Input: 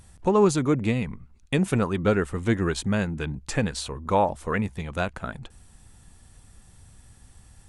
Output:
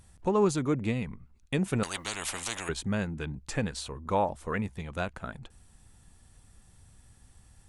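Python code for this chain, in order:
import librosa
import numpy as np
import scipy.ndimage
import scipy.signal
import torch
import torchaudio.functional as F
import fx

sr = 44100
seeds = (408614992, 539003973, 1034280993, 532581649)

y = fx.spectral_comp(x, sr, ratio=10.0, at=(1.83, 2.69))
y = y * librosa.db_to_amplitude(-5.5)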